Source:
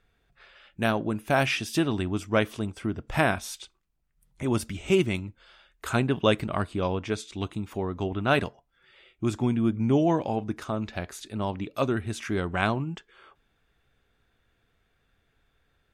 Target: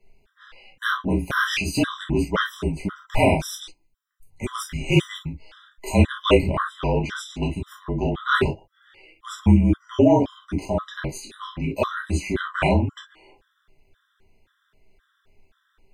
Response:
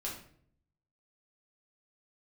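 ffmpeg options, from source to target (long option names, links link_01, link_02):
-filter_complex "[0:a]afreqshift=-35[link_01];[1:a]atrim=start_sample=2205,atrim=end_sample=3087[link_02];[link_01][link_02]afir=irnorm=-1:irlink=0,afftfilt=real='re*gt(sin(2*PI*1.9*pts/sr)*(1-2*mod(floor(b*sr/1024/1000),2)),0)':imag='im*gt(sin(2*PI*1.9*pts/sr)*(1-2*mod(floor(b*sr/1024/1000),2)),0)':win_size=1024:overlap=0.75,volume=7.5dB"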